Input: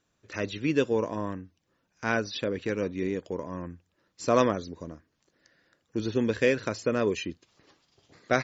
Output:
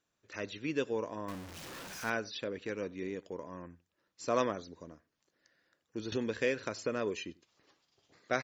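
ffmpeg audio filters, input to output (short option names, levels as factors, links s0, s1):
-filter_complex "[0:a]asettb=1/sr,asplit=3[s0][s1][s2];[s0]atrim=end=1.284[s3];[s1]atrim=start=1.28:end=2.1,asetpts=PTS-STARTPTS,afade=t=in:d=0.004:c=qsin,afade=t=out:st=0.816:d=0.004:c=qsin,aeval=exprs='val(0)+0.5*0.0251*sgn(val(0))':c=same[s4];[s2]atrim=start=2.096[s5];[s3][s4]acrossfade=d=0.004:c1=hsin:c2=qsin[s6];[s6][s5]acrossfade=d=0.004:c1=qsin:c2=hsin,lowshelf=f=250:g=-7,asettb=1/sr,asplit=3[s7][s8][s9];[s7]atrim=end=6.124[s10];[s8]atrim=start=6.12:end=7.02,asetpts=PTS-STARTPTS,afade=t=in:d=0.004:c=qsin,afade=t=out:st=0.896:d=0.004:c=qsin,acompressor=mode=upward:threshold=0.0631:ratio=2.5[s11];[s9]atrim=start=7.016[s12];[s10][s11]acrossfade=d=0.004:c1=hsin:c2=qsin[s13];[s13][s12]acrossfade=d=0.004:c1=qsin:c2=hsin,asplit=2[s14][s15];[s15]adelay=93.29,volume=0.0631,highshelf=f=4000:g=-2.1[s16];[s14][s16]amix=inputs=2:normalize=0,volume=0.473"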